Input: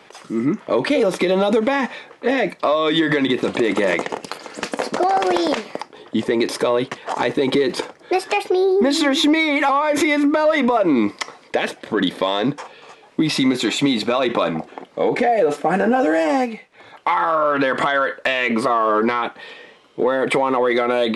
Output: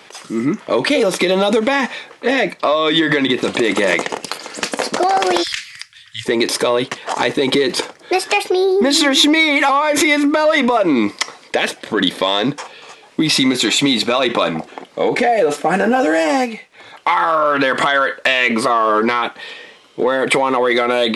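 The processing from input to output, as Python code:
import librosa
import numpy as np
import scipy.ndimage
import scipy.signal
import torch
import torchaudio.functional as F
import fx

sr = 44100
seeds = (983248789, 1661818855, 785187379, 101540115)

y = fx.high_shelf(x, sr, hz=5100.0, db=-5.5, at=(2.44, 3.42))
y = fx.ellip_bandstop(y, sr, low_hz=110.0, high_hz=1700.0, order=3, stop_db=50, at=(5.42, 6.25), fade=0.02)
y = fx.high_shelf(y, sr, hz=2200.0, db=8.5)
y = y * librosa.db_to_amplitude(1.5)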